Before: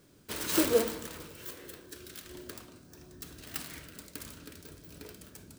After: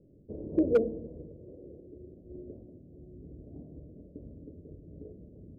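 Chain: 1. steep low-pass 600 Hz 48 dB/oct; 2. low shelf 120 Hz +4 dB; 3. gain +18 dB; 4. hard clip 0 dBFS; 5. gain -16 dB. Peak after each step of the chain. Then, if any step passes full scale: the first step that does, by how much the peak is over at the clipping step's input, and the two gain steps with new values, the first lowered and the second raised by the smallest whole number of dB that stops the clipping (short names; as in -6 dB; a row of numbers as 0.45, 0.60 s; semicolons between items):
-14.5, -14.0, +4.0, 0.0, -16.0 dBFS; step 3, 4.0 dB; step 3 +14 dB, step 5 -12 dB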